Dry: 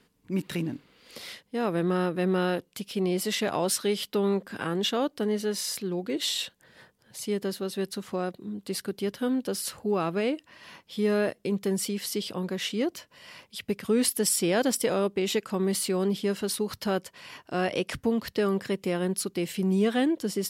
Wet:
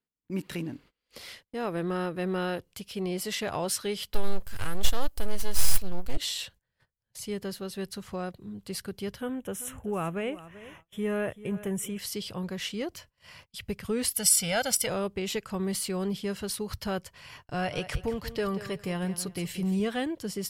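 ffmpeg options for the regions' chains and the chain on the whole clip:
-filter_complex "[0:a]asettb=1/sr,asplit=3[s0][s1][s2];[s0]atrim=end=4.144[s3];[s1]atrim=start=4.14:end=6.17,asetpts=PTS-STARTPTS,afade=t=in:d=0.004:c=qsin,afade=t=out:st=2.026:d=0.004:c=qsin,aemphasis=mode=production:type=75fm,aeval=exprs='max(val(0),0)':c=same[s4];[s2]atrim=start=6.166[s5];[s3][s4]acrossfade=d=0.004:c1=hsin:c2=qsin[s6];[s6][s5]acrossfade=d=0.004:c1=qsin:c2=hsin,asettb=1/sr,asplit=3[s7][s8][s9];[s7]atrim=end=9.214[s10];[s8]atrim=start=9.21:end=11.99,asetpts=PTS-STARTPTS,afade=t=in:d=0.004:c=qsin,afade=t=out:st=2.776:d=0.004:c=qsin,asuperstop=centerf=4600:order=4:qfactor=1.5,aecho=1:1:387|774:0.158|0.0285,atrim=end_sample=122598[s11];[s9]atrim=start=11.986[s12];[s10][s11]acrossfade=d=0.004:c1=hsin:c2=qsin[s13];[s13][s12]acrossfade=d=0.004:c1=qsin:c2=hsin,asettb=1/sr,asplit=3[s14][s15][s16];[s14]atrim=end=14.144[s17];[s15]atrim=start=14.14:end=14.87,asetpts=PTS-STARTPTS,afade=t=in:d=0.004:c=qsin,afade=t=out:st=0.726:d=0.004:c=qsin,tiltshelf=f=1100:g=-4,aecho=1:1:1.4:0.86,atrim=end_sample=32193[s18];[s16]atrim=start=14.866[s19];[s17][s18]acrossfade=d=0.004:c1=hsin:c2=qsin[s20];[s20][s19]acrossfade=d=0.004:c1=qsin:c2=hsin,asettb=1/sr,asplit=3[s21][s22][s23];[s21]atrim=end=17.444[s24];[s22]atrim=start=17.44:end=19.8,asetpts=PTS-STARTPTS,afade=t=in:d=0.004:c=qsin,afade=t=out:st=2.356:d=0.004:c=qsin,aecho=1:1:6.8:0.32,atrim=end_sample=104076,aecho=1:1:185|370|555:0.224|0.056|0.014,atrim=end_sample=104076[s25];[s23]atrim=start=19.796[s26];[s24][s25]acrossfade=d=0.004:c1=hsin:c2=qsin[s27];[s27][s26]acrossfade=d=0.004:c1=qsin:c2=hsin,bandreject=f=3700:w=21,agate=range=0.0501:threshold=0.00355:ratio=16:detection=peak,asubboost=boost=11.5:cutoff=77,volume=0.75"

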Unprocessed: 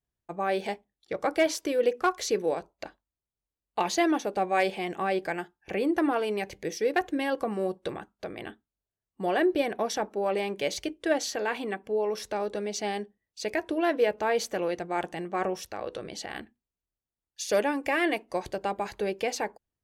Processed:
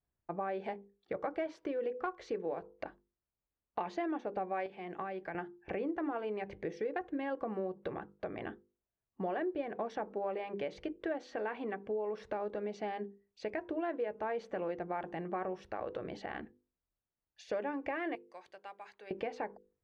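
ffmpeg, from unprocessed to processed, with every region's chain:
-filter_complex "[0:a]asettb=1/sr,asplit=3[s0][s1][s2];[s0]atrim=end=4.664[s3];[s1]atrim=start=4.66:end=5.35,asetpts=PTS-STARTPTS,afade=t=in:d=0.004:c=qsin,afade=t=out:st=0.686:d=0.004:c=qsin,agate=range=0.0224:threshold=0.01:ratio=3:release=100:detection=peak,acrossover=split=210|1100[s4][s5][s6];[s4]acompressor=threshold=0.00224:ratio=4[s7];[s5]acompressor=threshold=0.00891:ratio=4[s8];[s6]acompressor=threshold=0.00708:ratio=4[s9];[s7][s8][s9]amix=inputs=3:normalize=0[s10];[s2]atrim=start=5.346[s11];[s3][s10]acrossfade=d=0.004:c1=hsin:c2=qsin[s12];[s12][s11]acrossfade=d=0.004:c1=qsin:c2=hsin,asettb=1/sr,asplit=3[s13][s14][s15];[s13]atrim=end=18.154[s16];[s14]atrim=start=18.15:end=19.11,asetpts=PTS-STARTPTS,afade=t=in:d=0.004:c=qsin,afade=t=out:st=0.956:d=0.004:c=qsin,aderivative,acrusher=bits=6:mode=log:mix=0:aa=0.000001[s17];[s15]atrim=start=19.106[s18];[s16][s17]acrossfade=d=0.004:c1=hsin:c2=qsin[s19];[s19][s18]acrossfade=d=0.004:c1=qsin:c2=hsin,bandreject=f=50:t=h:w=6,bandreject=f=100:t=h:w=6,bandreject=f=150:t=h:w=6,bandreject=f=200:t=h:w=6,bandreject=f=250:t=h:w=6,bandreject=f=300:t=h:w=6,bandreject=f=350:t=h:w=6,bandreject=f=400:t=h:w=6,bandreject=f=450:t=h:w=6,bandreject=f=500:t=h:w=6,acompressor=threshold=0.0158:ratio=4,lowpass=1800,volume=1.12"

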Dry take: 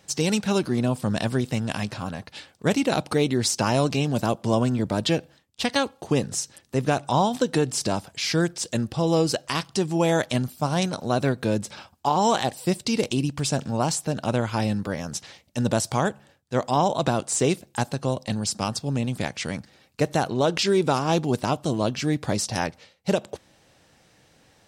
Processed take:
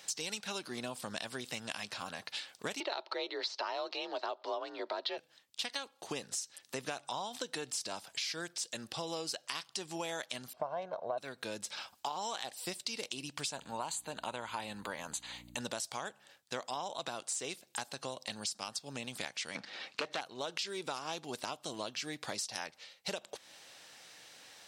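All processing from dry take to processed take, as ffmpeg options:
-filter_complex "[0:a]asettb=1/sr,asplit=3[s0][s1][s2];[s0]atrim=end=2.804[s3];[s1]atrim=start=2.8:end=5.18,asetpts=PTS-STARTPTS,afade=t=in:d=0.004:c=qsin,afade=t=out:st=2.376:d=0.004:c=qsin,afreqshift=46,highpass=f=340:w=0.5412,highpass=f=340:w=1.3066,equalizer=f=370:t=q:w=4:g=9,equalizer=f=620:t=q:w=4:g=10,equalizer=f=920:t=q:w=4:g=8,equalizer=f=1300:t=q:w=4:g=6,equalizer=f=1900:t=q:w=4:g=4,equalizer=f=4200:t=q:w=4:g=8,lowpass=f=4600:w=0.5412,lowpass=f=4600:w=1.3066[s4];[s2]atrim=start=5.176[s5];[s3][s4]acrossfade=d=0.004:c1=hsin:c2=qsin[s6];[s6][s5]acrossfade=d=0.004:c1=qsin:c2=hsin,asettb=1/sr,asplit=3[s7][s8][s9];[s7]atrim=end=10.534[s10];[s8]atrim=start=10.53:end=11.18,asetpts=PTS-STARTPTS,afade=t=in:d=0.004:c=qsin,afade=t=out:st=0.646:d=0.004:c=qsin,lowpass=1400,equalizer=f=690:w=1.7:g=14.5,aecho=1:1:1.9:0.5,atrim=end_sample=28665[s11];[s9]atrim=start=11.176[s12];[s10][s11]acrossfade=d=0.004:c1=hsin:c2=qsin[s13];[s13][s12]acrossfade=d=0.004:c1=qsin:c2=hsin,asettb=1/sr,asplit=3[s14][s15][s16];[s14]atrim=end=13.524[s17];[s15]atrim=start=13.52:end=15.61,asetpts=PTS-STARTPTS,afade=t=in:d=0.004:c=qsin,afade=t=out:st=2.086:d=0.004:c=qsin,equalizer=f=950:w=4.5:g=8.5,aeval=exprs='val(0)+0.0126*(sin(2*PI*60*n/s)+sin(2*PI*2*60*n/s)/2+sin(2*PI*3*60*n/s)/3+sin(2*PI*4*60*n/s)/4+sin(2*PI*5*60*n/s)/5)':c=same,asuperstop=centerf=5400:order=4:qfactor=3.3[s18];[s16]atrim=start=15.606[s19];[s17][s18]acrossfade=d=0.004:c1=hsin:c2=qsin[s20];[s20][s19]acrossfade=d=0.004:c1=qsin:c2=hsin,asettb=1/sr,asplit=3[s21][s22][s23];[s21]atrim=end=19.554[s24];[s22]atrim=start=19.55:end=20.21,asetpts=PTS-STARTPTS,afade=t=in:d=0.004:c=qsin,afade=t=out:st=0.656:d=0.004:c=qsin,highpass=170,lowpass=3900,aeval=exprs='0.355*sin(PI/2*2.24*val(0)/0.355)':c=same[s25];[s23]atrim=start=20.206[s26];[s24][s25]acrossfade=d=0.004:c1=hsin:c2=qsin[s27];[s27][s26]acrossfade=d=0.004:c1=qsin:c2=hsin,highpass=f=1400:p=1,equalizer=f=3900:w=1.5:g=2.5,acompressor=threshold=0.00631:ratio=5,volume=2"

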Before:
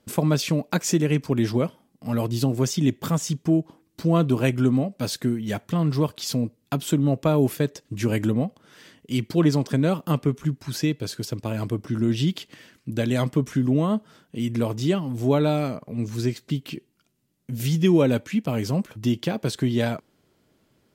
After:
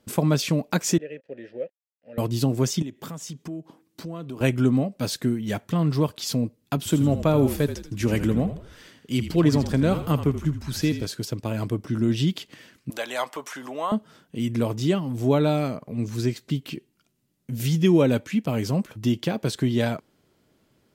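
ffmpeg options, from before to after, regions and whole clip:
-filter_complex "[0:a]asettb=1/sr,asplit=3[s0][s1][s2];[s0]atrim=end=0.984[s3];[s1]atrim=start=0.98:end=2.18,asetpts=PTS-STARTPTS,afade=t=in:d=0.004:c=qsin,afade=t=out:st=1.196:d=0.004:c=qsin,aeval=exprs='sgn(val(0))*max(abs(val(0))-0.00841,0)':c=same,asplit=3[s4][s5][s6];[s4]bandpass=f=530:t=q:w=8,volume=1[s7];[s5]bandpass=f=1840:t=q:w=8,volume=0.501[s8];[s6]bandpass=f=2480:t=q:w=8,volume=0.355[s9];[s7][s8][s9]amix=inputs=3:normalize=0,highshelf=f=3600:g=-7[s10];[s2]atrim=start=2.176[s11];[s3][s10]acrossfade=d=0.004:c1=hsin:c2=qsin[s12];[s12][s11]acrossfade=d=0.004:c1=qsin:c2=hsin,asettb=1/sr,asplit=3[s13][s14][s15];[s13]atrim=end=2.824[s16];[s14]atrim=start=2.82:end=4.41,asetpts=PTS-STARTPTS,afade=t=in:d=0.004:c=qsin,afade=t=out:st=1.586:d=0.004:c=qsin,highpass=140,acompressor=threshold=0.0178:ratio=3:attack=3.2:release=140:knee=1:detection=peak[s17];[s15]atrim=start=4.406[s18];[s16][s17]acrossfade=d=0.004:c1=hsin:c2=qsin[s19];[s19][s18]acrossfade=d=0.004:c1=qsin:c2=hsin,asettb=1/sr,asplit=3[s20][s21][s22];[s20]atrim=end=6.774[s23];[s21]atrim=start=6.77:end=11.06,asetpts=PTS-STARTPTS,afade=t=in:d=0.004:c=qsin,afade=t=out:st=4.286:d=0.004:c=qsin,highpass=54,asplit=6[s24][s25][s26][s27][s28][s29];[s25]adelay=81,afreqshift=-43,volume=0.299[s30];[s26]adelay=162,afreqshift=-86,volume=0.135[s31];[s27]adelay=243,afreqshift=-129,volume=0.0603[s32];[s28]adelay=324,afreqshift=-172,volume=0.0272[s33];[s29]adelay=405,afreqshift=-215,volume=0.0123[s34];[s24][s30][s31][s32][s33][s34]amix=inputs=6:normalize=0,atrim=end_sample=189189[s35];[s22]atrim=start=11.056[s36];[s23][s35]acrossfade=d=0.004:c1=hsin:c2=qsin[s37];[s37][s36]acrossfade=d=0.004:c1=qsin:c2=hsin,asettb=1/sr,asplit=3[s38][s39][s40];[s38]atrim=end=12.904[s41];[s39]atrim=start=12.9:end=13.92,asetpts=PTS-STARTPTS,afade=t=in:d=0.004:c=qsin,afade=t=out:st=1.016:d=0.004:c=qsin,highpass=f=820:t=q:w=1.8,acompressor=mode=upward:threshold=0.0282:ratio=2.5:attack=3.2:release=140:knee=2.83:detection=peak[s42];[s40]atrim=start=13.916[s43];[s41][s42]acrossfade=d=0.004:c1=hsin:c2=qsin[s44];[s44][s43]acrossfade=d=0.004:c1=qsin:c2=hsin"

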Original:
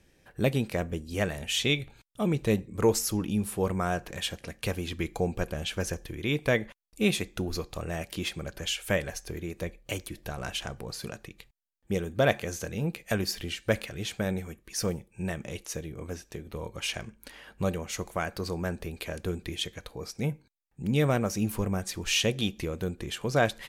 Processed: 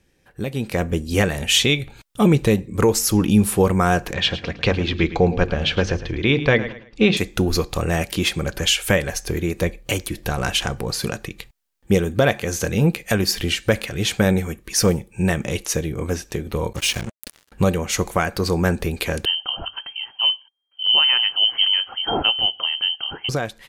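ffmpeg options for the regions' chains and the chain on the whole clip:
-filter_complex "[0:a]asettb=1/sr,asplit=3[s0][s1][s2];[s0]atrim=end=4.134[s3];[s1]atrim=start=4.13:end=7.17,asetpts=PTS-STARTPTS,afade=t=in:d=0.004:c=qsin,afade=t=out:st=3.036:d=0.004:c=qsin,lowpass=f=4700:w=0.5412,lowpass=f=4700:w=1.3066,bandreject=f=50:t=h:w=6,bandreject=f=100:t=h:w=6,bandreject=f=150:t=h:w=6,bandreject=f=200:t=h:w=6,bandreject=f=250:t=h:w=6,bandreject=f=300:t=h:w=6,bandreject=f=350:t=h:w=6,aecho=1:1:109|218|327:0.2|0.0519|0.0135,atrim=end_sample=134064[s4];[s2]atrim=start=7.166[s5];[s3][s4]acrossfade=d=0.004:c1=hsin:c2=qsin[s6];[s6][s5]acrossfade=d=0.004:c1=qsin:c2=hsin,asettb=1/sr,asplit=3[s7][s8][s9];[s7]atrim=end=16.734[s10];[s8]atrim=start=16.73:end=17.52,asetpts=PTS-STARTPTS,afade=t=in:d=0.004:c=qsin,afade=t=out:st=0.786:d=0.004:c=qsin,equalizer=f=980:w=0.67:g=-10.5,acrusher=bits=6:mix=0:aa=0.5[s11];[s9]atrim=start=17.516[s12];[s10][s11]acrossfade=d=0.004:c1=hsin:c2=qsin[s13];[s13][s12]acrossfade=d=0.004:c1=qsin:c2=hsin,asettb=1/sr,asplit=3[s14][s15][s16];[s14]atrim=end=19.254[s17];[s15]atrim=start=19.25:end=23.29,asetpts=PTS-STARTPTS,afade=t=in:d=0.004:c=qsin,afade=t=out:st=4.036:d=0.004:c=qsin,equalizer=f=690:w=0.52:g=-11.5,lowpass=f=2700:t=q:w=0.5098,lowpass=f=2700:t=q:w=0.6013,lowpass=f=2700:t=q:w=0.9,lowpass=f=2700:t=q:w=2.563,afreqshift=-3200[s18];[s16]atrim=start=23.286[s19];[s17][s18]acrossfade=d=0.004:c1=hsin:c2=qsin[s20];[s20][s19]acrossfade=d=0.004:c1=qsin:c2=hsin,bandreject=f=630:w=12,alimiter=limit=0.112:level=0:latency=1:release=378,dynaudnorm=f=190:g=7:m=4.73"

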